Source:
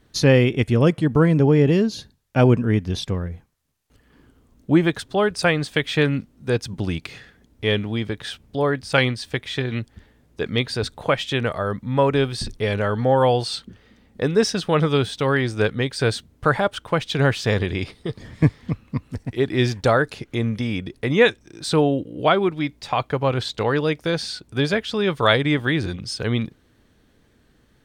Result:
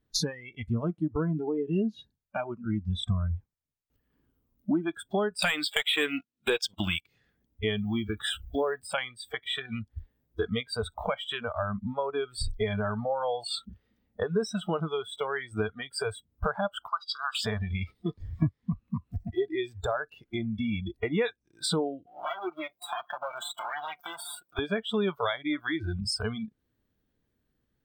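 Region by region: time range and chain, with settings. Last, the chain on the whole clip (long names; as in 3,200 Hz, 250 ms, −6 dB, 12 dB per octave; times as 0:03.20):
0:05.42–0:07.01: meter weighting curve D + leveller curve on the samples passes 3
0:07.77–0:08.87: mu-law and A-law mismatch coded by mu + parametric band 8,300 Hz +2.5 dB 0.79 octaves
0:16.88–0:17.35: pair of resonant band-passes 2,400 Hz, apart 2 octaves + spectral tilt +3.5 dB per octave
0:22.06–0:24.59: lower of the sound and its delayed copy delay 5.7 ms + high-pass filter 560 Hz 6 dB per octave + downward compressor 4 to 1, threshold −34 dBFS
whole clip: downward compressor 8 to 1, threshold −29 dBFS; low-shelf EQ 480 Hz +4.5 dB; noise reduction from a noise print of the clip's start 25 dB; level +3 dB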